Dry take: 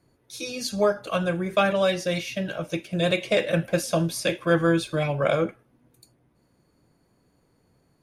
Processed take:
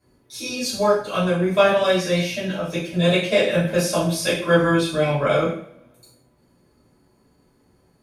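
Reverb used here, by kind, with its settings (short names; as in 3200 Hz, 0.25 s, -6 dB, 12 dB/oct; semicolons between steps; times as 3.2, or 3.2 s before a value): two-slope reverb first 0.49 s, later 1.5 s, from -26 dB, DRR -9.5 dB; gain -5 dB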